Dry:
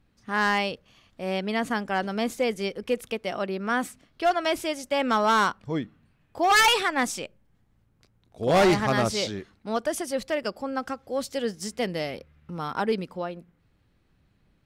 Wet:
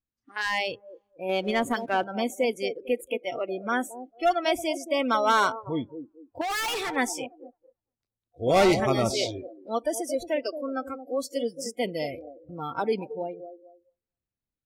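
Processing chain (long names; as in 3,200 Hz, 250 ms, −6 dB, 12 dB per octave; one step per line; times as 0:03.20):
on a send: delay with a band-pass on its return 225 ms, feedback 30%, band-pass 430 Hz, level −9 dB
on the sum: noise reduction from a noise print of the clip's start 28 dB
0:06.41–0:06.96: hard clipping −28 dBFS, distortion −10 dB
parametric band 170 Hz −6 dB 0.31 octaves
0:01.29–0:02.04: leveller curve on the samples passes 1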